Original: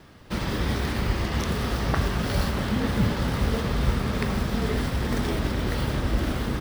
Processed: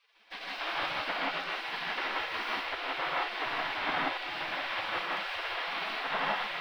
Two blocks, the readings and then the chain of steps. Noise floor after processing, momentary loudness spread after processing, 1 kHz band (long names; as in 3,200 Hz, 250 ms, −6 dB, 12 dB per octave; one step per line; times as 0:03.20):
−46 dBFS, 4 LU, 0.0 dB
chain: gate on every frequency bin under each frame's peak −25 dB weak
high-shelf EQ 4,600 Hz −4.5 dB
speech leveller within 3 dB 2 s
high-frequency loss of the air 410 metres
reverb whose tail is shaped and stops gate 200 ms rising, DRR −4 dB
level +7.5 dB